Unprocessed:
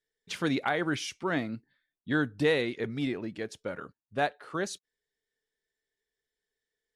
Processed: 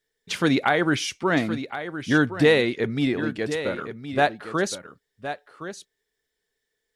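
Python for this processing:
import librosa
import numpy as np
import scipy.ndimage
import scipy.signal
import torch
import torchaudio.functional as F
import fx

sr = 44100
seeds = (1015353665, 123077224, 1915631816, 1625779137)

y = x + 10.0 ** (-11.0 / 20.0) * np.pad(x, (int(1067 * sr / 1000.0), 0))[:len(x)]
y = F.gain(torch.from_numpy(y), 8.0).numpy()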